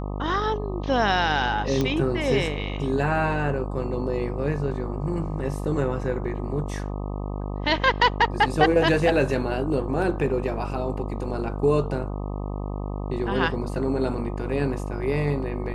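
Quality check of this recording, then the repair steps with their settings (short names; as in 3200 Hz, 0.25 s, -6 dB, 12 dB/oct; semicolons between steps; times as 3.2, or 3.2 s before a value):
buzz 50 Hz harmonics 25 -30 dBFS
1.81 pop -12 dBFS
10.02 gap 2.7 ms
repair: de-click; de-hum 50 Hz, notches 25; interpolate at 10.02, 2.7 ms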